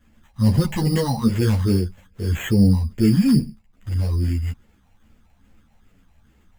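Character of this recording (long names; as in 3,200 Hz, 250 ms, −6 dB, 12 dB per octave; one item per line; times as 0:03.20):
phaser sweep stages 6, 2.4 Hz, lowest notch 350–1,600 Hz
aliases and images of a low sample rate 4,900 Hz, jitter 0%
a shimmering, thickened sound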